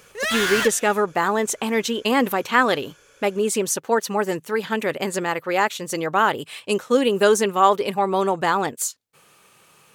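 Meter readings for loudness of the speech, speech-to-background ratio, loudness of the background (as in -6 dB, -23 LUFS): -21.5 LUFS, 1.5 dB, -23.0 LUFS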